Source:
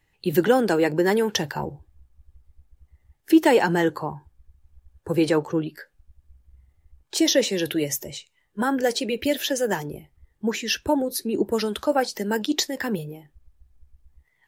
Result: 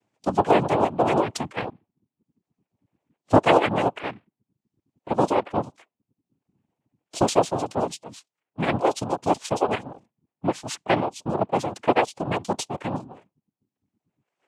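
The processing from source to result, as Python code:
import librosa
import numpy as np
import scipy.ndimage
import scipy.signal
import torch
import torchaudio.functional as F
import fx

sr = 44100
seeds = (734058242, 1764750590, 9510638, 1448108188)

y = fx.curve_eq(x, sr, hz=(140.0, 860.0, 2100.0, 3200.0), db=(0, 7, -15, -4))
y = fx.dereverb_blind(y, sr, rt60_s=0.88)
y = fx.noise_vocoder(y, sr, seeds[0], bands=4)
y = y * 10.0 ** (-3.5 / 20.0)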